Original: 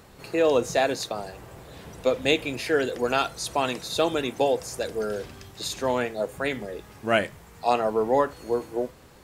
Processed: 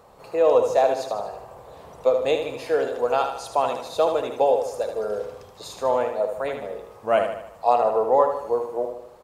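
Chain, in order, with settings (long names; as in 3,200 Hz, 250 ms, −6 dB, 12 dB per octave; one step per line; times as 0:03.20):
flat-topped bell 740 Hz +12 dB
on a send: repeating echo 76 ms, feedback 50%, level −7 dB
on the sum: level −8 dB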